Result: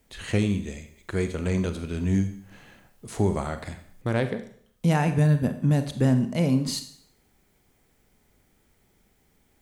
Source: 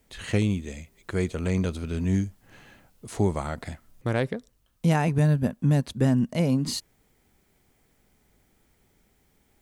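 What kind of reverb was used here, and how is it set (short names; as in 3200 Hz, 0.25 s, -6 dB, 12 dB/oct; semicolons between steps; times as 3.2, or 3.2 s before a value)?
Schroeder reverb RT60 0.59 s, combs from 31 ms, DRR 8.5 dB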